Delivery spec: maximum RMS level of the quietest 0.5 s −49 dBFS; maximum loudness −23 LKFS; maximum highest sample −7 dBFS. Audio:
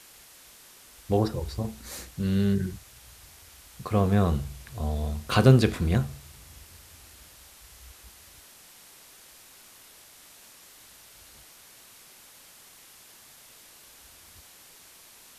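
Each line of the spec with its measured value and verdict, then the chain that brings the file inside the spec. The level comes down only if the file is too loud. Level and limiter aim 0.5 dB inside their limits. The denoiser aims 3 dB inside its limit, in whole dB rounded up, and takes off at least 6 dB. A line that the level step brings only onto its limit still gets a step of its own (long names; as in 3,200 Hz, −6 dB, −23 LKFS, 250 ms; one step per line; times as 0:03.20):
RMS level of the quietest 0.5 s −52 dBFS: in spec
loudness −26.0 LKFS: in spec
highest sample −5.0 dBFS: out of spec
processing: brickwall limiter −7.5 dBFS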